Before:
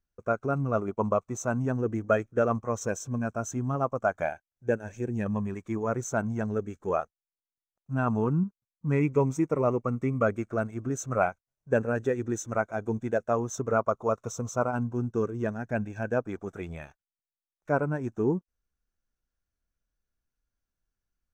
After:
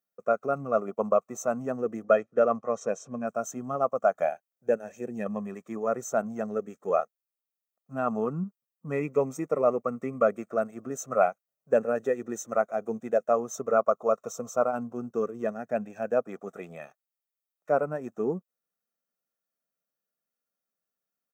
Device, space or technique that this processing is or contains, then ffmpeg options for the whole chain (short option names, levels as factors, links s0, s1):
through cloth: -filter_complex "[0:a]highshelf=f=2200:g=-16,asplit=3[s0][s1][s2];[s0]afade=t=out:st=2.03:d=0.02[s3];[s1]lowpass=5400,afade=t=in:st=2.03:d=0.02,afade=t=out:st=3.26:d=0.02[s4];[s2]afade=t=in:st=3.26:d=0.02[s5];[s3][s4][s5]amix=inputs=3:normalize=0,highpass=f=210:w=0.5412,highpass=f=210:w=1.3066,aemphasis=mode=production:type=75fm,aecho=1:1:1.6:0.59,volume=1.26"